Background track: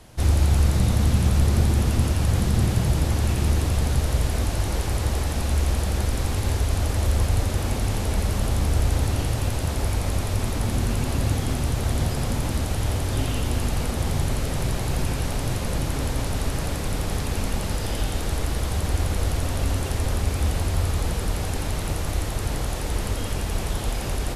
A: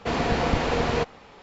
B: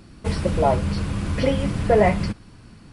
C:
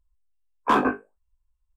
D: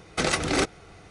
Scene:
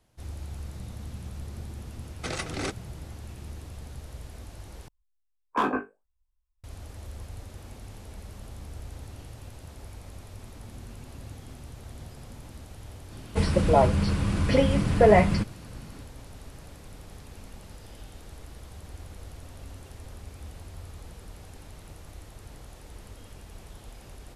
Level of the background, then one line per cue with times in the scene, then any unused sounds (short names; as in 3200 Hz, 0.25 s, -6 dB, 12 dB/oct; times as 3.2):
background track -19.5 dB
2.06 add D -9 dB
4.88 replace with C -5.5 dB
13.11 add B -0.5 dB
not used: A